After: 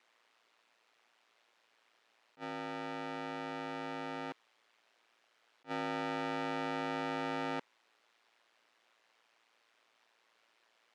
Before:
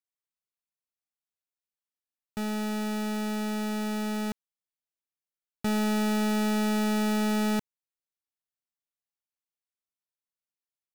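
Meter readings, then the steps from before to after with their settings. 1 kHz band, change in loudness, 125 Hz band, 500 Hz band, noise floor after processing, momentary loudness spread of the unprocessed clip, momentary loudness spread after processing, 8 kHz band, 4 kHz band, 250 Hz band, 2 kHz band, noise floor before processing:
−4.0 dB, −10.5 dB, can't be measured, −7.5 dB, −74 dBFS, 8 LU, 7 LU, −21.0 dB, −9.5 dB, −15.5 dB, −5.5 dB, below −85 dBFS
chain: converter with a step at zero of −49 dBFS
ring modulation 57 Hz
band-pass filter 430–2,900 Hz
level that may rise only so fast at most 420 dB per second
level −1.5 dB

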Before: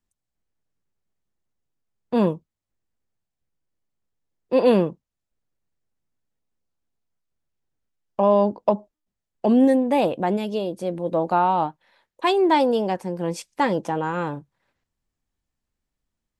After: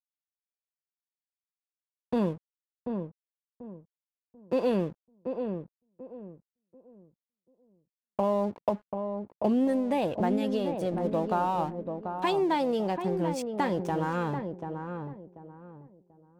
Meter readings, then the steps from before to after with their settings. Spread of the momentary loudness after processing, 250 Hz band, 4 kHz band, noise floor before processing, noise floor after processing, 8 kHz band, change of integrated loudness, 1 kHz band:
20 LU, −6.0 dB, −7.5 dB, −84 dBFS, below −85 dBFS, can't be measured, −8.0 dB, −7.5 dB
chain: parametric band 79 Hz +13.5 dB 1.2 octaves
downward compressor 2.5 to 1, threshold −25 dBFS, peak gain reduction 9.5 dB
dead-zone distortion −47 dBFS
on a send: feedback echo with a low-pass in the loop 738 ms, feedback 30%, low-pass 980 Hz, level −5.5 dB
on the sum: level −1.5 dB

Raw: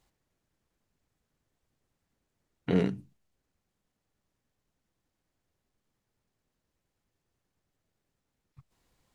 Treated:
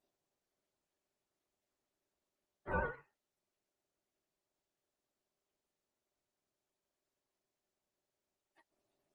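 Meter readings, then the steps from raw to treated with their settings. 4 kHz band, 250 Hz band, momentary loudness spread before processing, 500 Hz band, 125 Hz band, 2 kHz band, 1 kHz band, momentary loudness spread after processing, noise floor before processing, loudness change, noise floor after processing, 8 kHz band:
below −20 dB, −20.5 dB, 15 LU, −10.0 dB, −15.0 dB, +3.5 dB, +4.0 dB, 16 LU, −84 dBFS, −9.5 dB, below −85 dBFS, can't be measured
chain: frequency axis turned over on the octave scale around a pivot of 430 Hz
ring modulation 490 Hz
level −4.5 dB
Opus 32 kbit/s 48,000 Hz

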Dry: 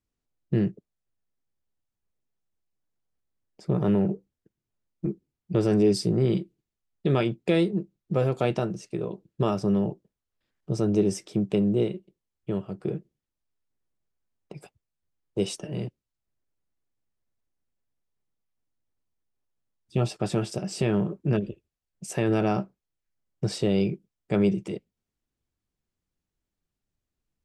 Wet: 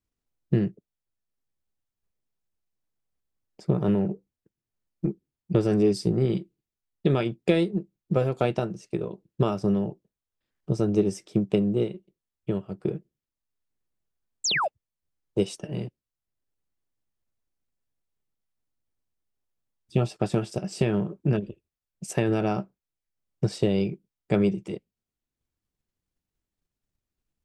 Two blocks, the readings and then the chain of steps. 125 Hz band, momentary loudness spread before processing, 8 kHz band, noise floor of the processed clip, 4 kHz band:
+0.5 dB, 12 LU, +2.5 dB, below −85 dBFS, +3.0 dB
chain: transient designer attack +5 dB, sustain −3 dB
sound drawn into the spectrogram fall, 0:14.44–0:14.68, 530–8,000 Hz −23 dBFS
level −1.5 dB

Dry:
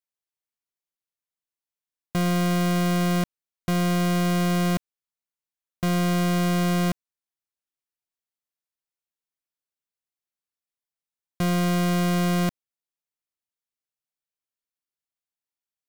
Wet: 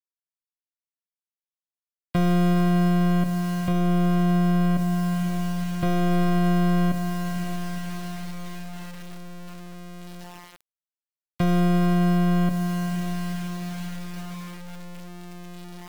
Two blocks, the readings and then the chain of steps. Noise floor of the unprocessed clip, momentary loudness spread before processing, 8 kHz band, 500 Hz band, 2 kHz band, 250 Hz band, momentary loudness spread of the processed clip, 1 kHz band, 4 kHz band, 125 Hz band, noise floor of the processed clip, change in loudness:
below −85 dBFS, 7 LU, −5.5 dB, +0.5 dB, −1.5 dB, +3.0 dB, 20 LU, +1.0 dB, −4.0 dB, +3.0 dB, below −85 dBFS, +0.5 dB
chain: rectangular room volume 220 cubic metres, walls furnished, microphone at 0.34 metres
in parallel at −2 dB: downward compressor 6 to 1, threshold −36 dBFS, peak gain reduction 14 dB
on the sum: gate on every frequency bin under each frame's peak −30 dB strong
on a send: feedback delay with all-pass diffusion 499 ms, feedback 64%, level −10.5 dB
on the sum: bit reduction 7 bits
dynamic equaliser 2,400 Hz, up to −5 dB, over −39 dBFS, Q 0.72
brickwall limiter −17.5 dBFS, peak gain reduction 5 dB
level +1.5 dB

